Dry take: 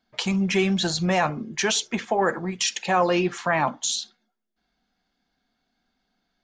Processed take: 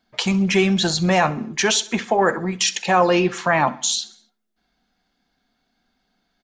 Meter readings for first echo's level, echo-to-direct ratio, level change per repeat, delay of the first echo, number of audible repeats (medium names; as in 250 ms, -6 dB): -20.5 dB, -19.0 dB, -5.5 dB, 65 ms, 3